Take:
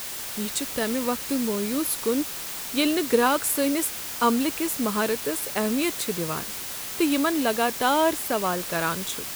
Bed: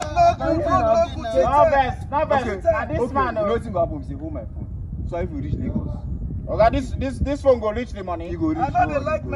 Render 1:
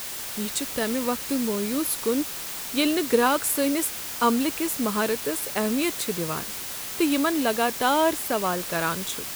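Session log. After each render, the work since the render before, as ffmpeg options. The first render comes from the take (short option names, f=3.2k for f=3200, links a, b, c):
-af anull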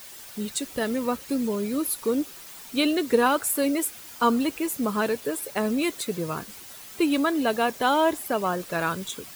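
-af "afftdn=nr=11:nf=-34"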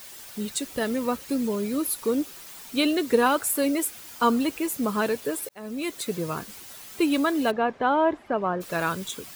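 -filter_complex "[0:a]asplit=3[a][b][c];[a]afade=t=out:st=7.5:d=0.02[d];[b]lowpass=1.8k,afade=t=in:st=7.5:d=0.02,afade=t=out:st=8.6:d=0.02[e];[c]afade=t=in:st=8.6:d=0.02[f];[d][e][f]amix=inputs=3:normalize=0,asplit=2[g][h];[g]atrim=end=5.49,asetpts=PTS-STARTPTS,afade=t=out:st=5.486:d=0.004:c=hsin[i];[h]atrim=start=5.49,asetpts=PTS-STARTPTS,afade=t=in:d=0.6[j];[i][j]concat=n=2:v=0:a=1"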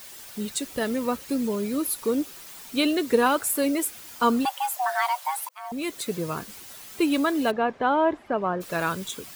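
-filter_complex "[0:a]asettb=1/sr,asplit=3[a][b][c];[a]atrim=end=4.454[d];[b]atrim=start=4.45:end=5.72,asetpts=PTS-STARTPTS,afade=t=in:d=0.004:c=qsin,afade=t=out:st=1.266:d=0.004:c=qsin,afreqshift=490[e];[c]atrim=start=5.716[f];[d][e]acrossfade=d=0.004:c1=hsin:c2=qsin[g];[g][f]acrossfade=d=0.004:c1=qsin:c2=hsin"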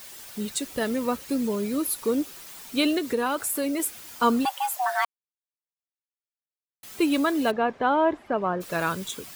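-filter_complex "[0:a]asettb=1/sr,asplit=3[a][b][c];[a]atrim=end=2.984[d];[b]atrim=start=2.98:end=3.8,asetpts=PTS-STARTPTS,afade=t=in:d=0.004:c=qsin,afade=t=out:st=0.816:d=0.004:c=qsin,acompressor=threshold=-25dB:ratio=2:attack=3.2:release=140:knee=1:detection=peak[e];[c]atrim=start=3.796[f];[d][e]acrossfade=d=0.004:c1=hsin:c2=qsin[g];[g][f]acrossfade=d=0.004:c1=qsin:c2=hsin,asplit=3[h][i][j];[h]atrim=end=5.05,asetpts=PTS-STARTPTS,afade=t=out:st=5.046:d=0.004:c=hsin[k];[i]atrim=start=5.05:end=6.83,asetpts=PTS-STARTPTS,volume=0[l];[j]atrim=start=6.83,asetpts=PTS-STARTPTS,afade=t=in:d=0.004:c=hsin[m];[k][l][m]concat=n=3:v=0:a=1"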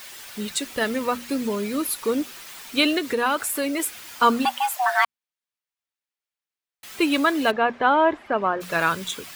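-af "equalizer=f=2.1k:w=0.46:g=7.5,bandreject=f=60:t=h:w=6,bandreject=f=120:t=h:w=6,bandreject=f=180:t=h:w=6,bandreject=f=240:t=h:w=6"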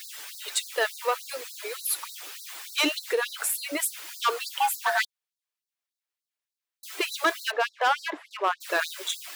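-af "volume=17dB,asoftclip=hard,volume=-17dB,afftfilt=real='re*gte(b*sr/1024,270*pow(3900/270,0.5+0.5*sin(2*PI*3.4*pts/sr)))':imag='im*gte(b*sr/1024,270*pow(3900/270,0.5+0.5*sin(2*PI*3.4*pts/sr)))':win_size=1024:overlap=0.75"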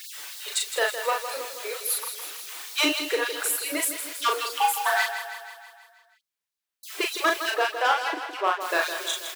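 -filter_complex "[0:a]asplit=2[a][b];[b]adelay=38,volume=-3.5dB[c];[a][c]amix=inputs=2:normalize=0,asplit=2[d][e];[e]aecho=0:1:161|322|483|644|805|966|1127:0.335|0.191|0.109|0.062|0.0354|0.0202|0.0115[f];[d][f]amix=inputs=2:normalize=0"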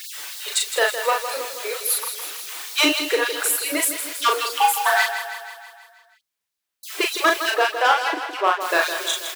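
-af "volume=5dB"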